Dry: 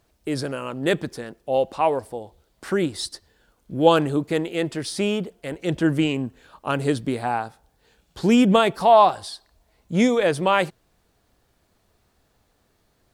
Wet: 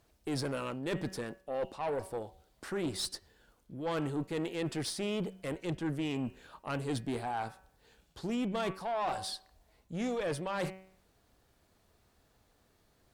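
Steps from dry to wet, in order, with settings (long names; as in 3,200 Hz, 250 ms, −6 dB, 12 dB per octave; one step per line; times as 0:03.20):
hum removal 189 Hz, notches 16
reversed playback
downward compressor 12 to 1, threshold −25 dBFS, peak gain reduction 16 dB
reversed playback
tube saturation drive 25 dB, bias 0.35
level −2.5 dB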